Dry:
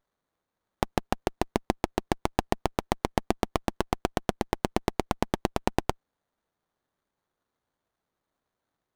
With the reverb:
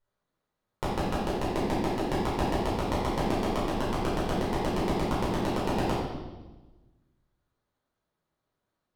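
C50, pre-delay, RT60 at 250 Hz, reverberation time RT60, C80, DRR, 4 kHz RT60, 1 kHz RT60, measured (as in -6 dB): 0.0 dB, 8 ms, 1.5 s, 1.2 s, 3.0 dB, -9.0 dB, 1.1 s, 1.1 s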